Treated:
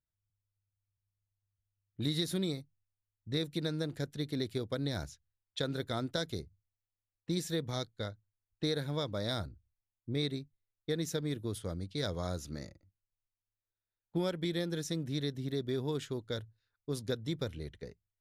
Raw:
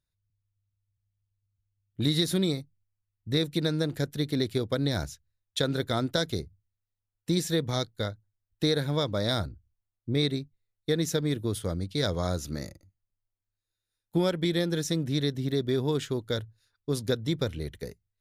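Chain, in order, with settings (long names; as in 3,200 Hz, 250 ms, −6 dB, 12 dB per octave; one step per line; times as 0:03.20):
low-pass that shuts in the quiet parts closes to 2,200 Hz, open at −25.5 dBFS
level −7.5 dB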